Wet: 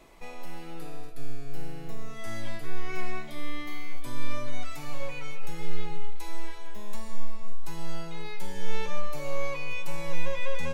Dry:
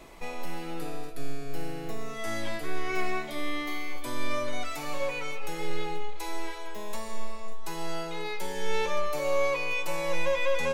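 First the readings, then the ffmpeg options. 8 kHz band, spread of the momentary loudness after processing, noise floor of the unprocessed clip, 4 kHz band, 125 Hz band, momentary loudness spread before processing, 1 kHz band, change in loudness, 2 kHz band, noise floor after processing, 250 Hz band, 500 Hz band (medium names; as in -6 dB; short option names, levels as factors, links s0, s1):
-5.5 dB, 11 LU, -37 dBFS, -5.5 dB, +4.0 dB, 12 LU, -6.5 dB, -6.0 dB, -5.5 dB, -37 dBFS, -3.5 dB, -8.0 dB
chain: -af "asubboost=boost=4:cutoff=200,volume=0.531"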